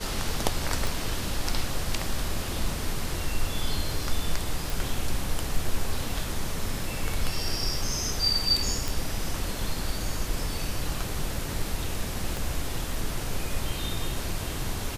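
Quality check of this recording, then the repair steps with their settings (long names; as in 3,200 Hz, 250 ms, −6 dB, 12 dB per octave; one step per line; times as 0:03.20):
0:00.87: click
0:04.70: click
0:08.88: click
0:12.37: click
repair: click removal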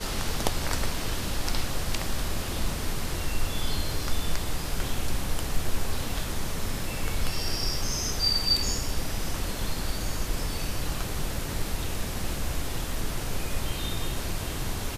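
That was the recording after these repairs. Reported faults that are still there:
0:12.37: click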